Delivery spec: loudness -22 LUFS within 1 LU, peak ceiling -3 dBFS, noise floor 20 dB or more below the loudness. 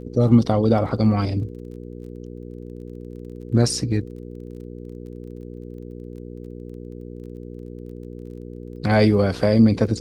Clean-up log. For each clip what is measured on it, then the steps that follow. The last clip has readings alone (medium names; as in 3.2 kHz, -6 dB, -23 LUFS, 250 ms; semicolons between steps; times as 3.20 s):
tick rate 23 per s; hum 60 Hz; highest harmonic 480 Hz; hum level -33 dBFS; loudness -19.5 LUFS; peak level -3.0 dBFS; loudness target -22.0 LUFS
-> de-click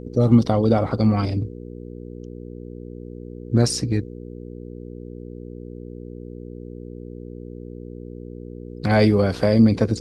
tick rate 0 per s; hum 60 Hz; highest harmonic 480 Hz; hum level -33 dBFS
-> de-hum 60 Hz, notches 8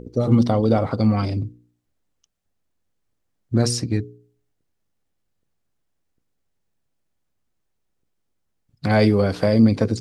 hum not found; loudness -19.5 LUFS; peak level -4.5 dBFS; loudness target -22.0 LUFS
-> trim -2.5 dB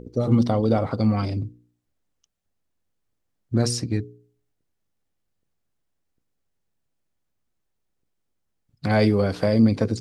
loudness -22.0 LUFS; peak level -7.0 dBFS; noise floor -76 dBFS